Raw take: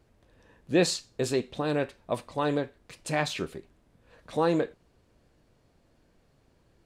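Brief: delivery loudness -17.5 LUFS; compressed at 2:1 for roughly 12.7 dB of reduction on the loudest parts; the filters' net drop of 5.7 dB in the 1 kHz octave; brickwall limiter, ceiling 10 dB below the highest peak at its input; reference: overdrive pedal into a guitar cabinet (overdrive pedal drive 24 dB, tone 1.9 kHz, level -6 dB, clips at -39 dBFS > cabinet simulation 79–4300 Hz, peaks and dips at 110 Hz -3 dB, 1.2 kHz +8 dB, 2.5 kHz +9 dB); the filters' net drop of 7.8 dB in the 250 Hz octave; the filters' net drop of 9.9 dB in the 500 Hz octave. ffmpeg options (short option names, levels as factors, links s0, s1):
-filter_complex "[0:a]equalizer=f=250:t=o:g=-7,equalizer=f=500:t=o:g=-8.5,equalizer=f=1000:t=o:g=-8,acompressor=threshold=0.00355:ratio=2,alimiter=level_in=5.62:limit=0.0631:level=0:latency=1,volume=0.178,asplit=2[s0][s1];[s1]highpass=f=720:p=1,volume=15.8,asoftclip=type=tanh:threshold=0.0112[s2];[s0][s2]amix=inputs=2:normalize=0,lowpass=f=1900:p=1,volume=0.501,highpass=79,equalizer=f=110:t=q:w=4:g=-3,equalizer=f=1200:t=q:w=4:g=8,equalizer=f=2500:t=q:w=4:g=9,lowpass=f=4300:w=0.5412,lowpass=f=4300:w=1.3066,volume=29.9"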